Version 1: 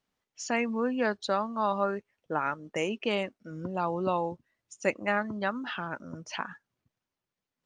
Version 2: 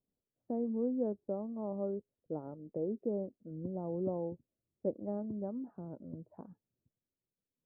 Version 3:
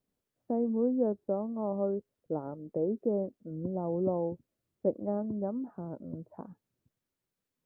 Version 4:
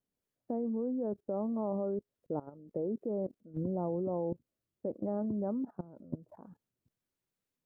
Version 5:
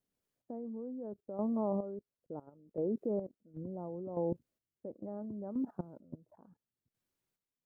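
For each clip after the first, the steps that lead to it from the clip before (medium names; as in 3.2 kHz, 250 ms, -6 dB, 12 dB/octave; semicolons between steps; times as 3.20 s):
inverse Chebyshev low-pass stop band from 3.2 kHz, stop band 80 dB; trim -3.5 dB
peaking EQ 1.3 kHz +5 dB 1.8 oct; trim +4.5 dB
level held to a coarse grid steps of 19 dB; trim +4.5 dB
square tremolo 0.72 Hz, depth 65%, duty 30%; trim +1 dB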